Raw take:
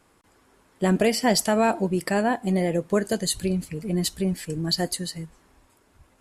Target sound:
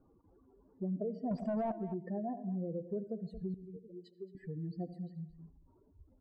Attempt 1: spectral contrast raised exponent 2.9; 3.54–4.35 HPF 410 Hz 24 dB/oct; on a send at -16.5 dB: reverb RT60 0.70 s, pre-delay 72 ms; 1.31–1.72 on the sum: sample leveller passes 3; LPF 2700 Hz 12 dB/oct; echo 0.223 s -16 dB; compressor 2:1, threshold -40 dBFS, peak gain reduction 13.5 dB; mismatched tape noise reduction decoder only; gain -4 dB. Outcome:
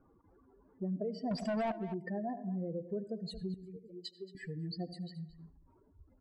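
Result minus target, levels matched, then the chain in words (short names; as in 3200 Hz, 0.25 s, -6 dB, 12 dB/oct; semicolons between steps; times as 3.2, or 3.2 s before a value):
2000 Hz band +11.0 dB
spectral contrast raised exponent 2.9; 3.54–4.35 HPF 410 Hz 24 dB/oct; on a send at -16.5 dB: reverb RT60 0.70 s, pre-delay 72 ms; 1.31–1.72 on the sum: sample leveller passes 3; LPF 870 Hz 12 dB/oct; echo 0.223 s -16 dB; compressor 2:1, threshold -40 dBFS, peak gain reduction 13 dB; mismatched tape noise reduction decoder only; gain -4 dB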